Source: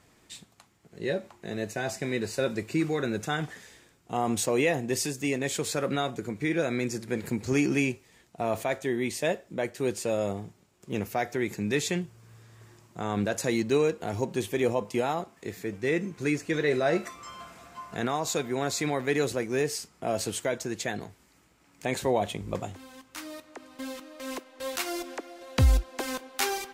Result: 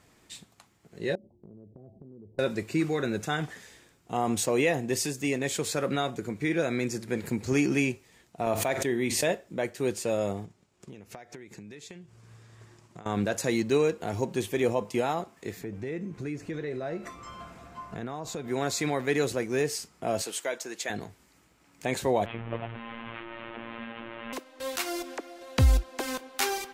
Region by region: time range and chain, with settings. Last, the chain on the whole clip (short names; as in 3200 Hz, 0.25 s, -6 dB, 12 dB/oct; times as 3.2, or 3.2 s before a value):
1.15–2.39 Gaussian blur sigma 19 samples + compressor 8:1, threshold -45 dBFS
8.46–9.35 expander -37 dBFS + doubler 48 ms -13 dB + backwards sustainer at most 43 dB/s
10.45–13.06 LPF 9500 Hz + compressor 12:1, threshold -42 dBFS + transient shaper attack +3 dB, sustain -4 dB
15.61–18.48 tilt -2 dB/oct + compressor 3:1, threshold -34 dBFS
20.22–20.9 HPF 250 Hz + low shelf 340 Hz -11 dB
22.25–24.33 delta modulation 16 kbps, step -31.5 dBFS + robotiser 115 Hz
whole clip: dry